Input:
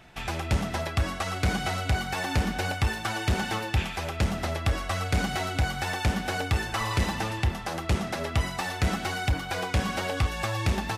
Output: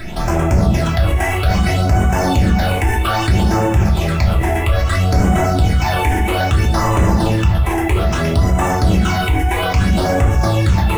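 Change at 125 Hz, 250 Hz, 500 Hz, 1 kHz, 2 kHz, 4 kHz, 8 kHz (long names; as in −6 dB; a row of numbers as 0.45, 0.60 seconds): +14.5, +14.5, +14.0, +12.0, +8.0, +7.0, +8.0 decibels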